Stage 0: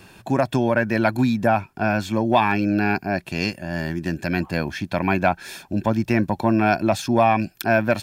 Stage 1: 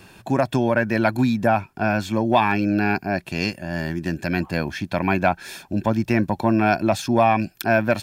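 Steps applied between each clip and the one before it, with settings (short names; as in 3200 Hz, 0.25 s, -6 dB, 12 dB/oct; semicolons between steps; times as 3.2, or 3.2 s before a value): nothing audible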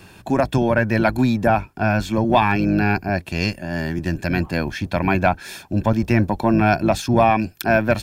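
octaver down 1 oct, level -5 dB; gain +1.5 dB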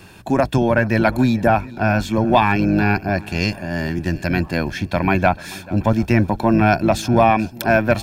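swung echo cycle 0.73 s, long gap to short 1.5:1, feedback 31%, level -21 dB; gain +1.5 dB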